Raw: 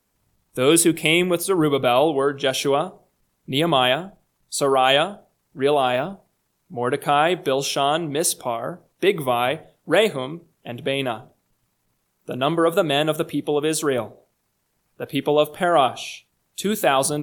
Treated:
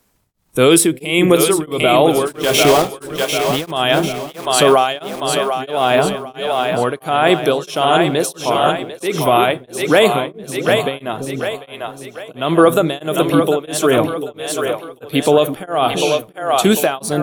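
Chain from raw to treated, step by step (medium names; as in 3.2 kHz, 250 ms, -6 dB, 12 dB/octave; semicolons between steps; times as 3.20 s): 2.27–3.71 s: block-companded coder 3-bit; two-band feedback delay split 410 Hz, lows 337 ms, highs 746 ms, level -7 dB; loudness maximiser +10 dB; tremolo of two beating tones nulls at 1.5 Hz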